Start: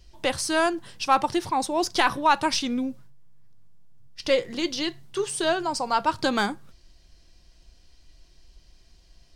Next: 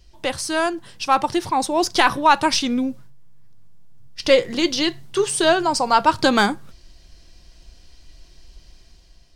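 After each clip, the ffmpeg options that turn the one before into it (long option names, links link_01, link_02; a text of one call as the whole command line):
ffmpeg -i in.wav -af "dynaudnorm=framelen=870:gausssize=3:maxgain=7dB,volume=1dB" out.wav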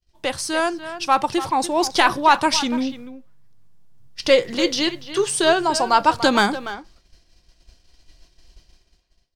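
ffmpeg -i in.wav -filter_complex "[0:a]lowshelf=frequency=210:gain=-3,agate=range=-33dB:threshold=-41dB:ratio=3:detection=peak,asplit=2[link_01][link_02];[link_02]adelay=290,highpass=300,lowpass=3400,asoftclip=type=hard:threshold=-10.5dB,volume=-11dB[link_03];[link_01][link_03]amix=inputs=2:normalize=0" out.wav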